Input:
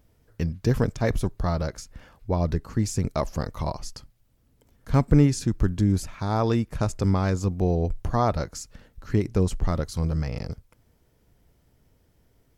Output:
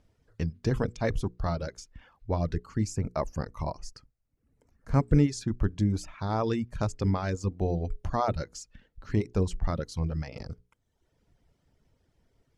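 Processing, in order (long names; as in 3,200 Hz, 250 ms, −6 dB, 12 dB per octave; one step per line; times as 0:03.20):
low-pass filter 7,300 Hz 12 dB per octave
mains-hum notches 60/120/180/240/300/360/420/480 Hz
reverb reduction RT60 0.84 s
0:02.84–0:05.01: parametric band 3,400 Hz −13.5 dB 0.55 octaves
level −3 dB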